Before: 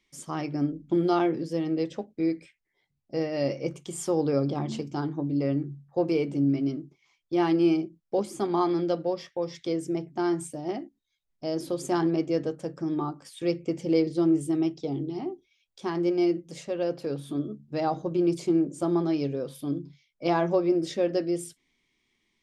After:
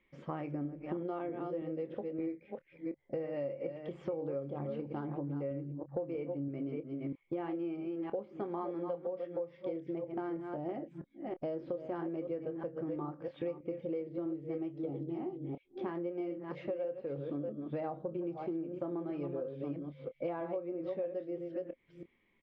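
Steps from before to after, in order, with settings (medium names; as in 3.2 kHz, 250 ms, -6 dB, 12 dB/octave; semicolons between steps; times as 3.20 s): chunks repeated in reverse 324 ms, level -8 dB; peaking EQ 530 Hz +10 dB 0.25 oct; doubling 27 ms -13 dB; compression 10:1, threshold -36 dBFS, peak gain reduction 23 dB; low-pass 2.5 kHz 24 dB/octave; trim +1 dB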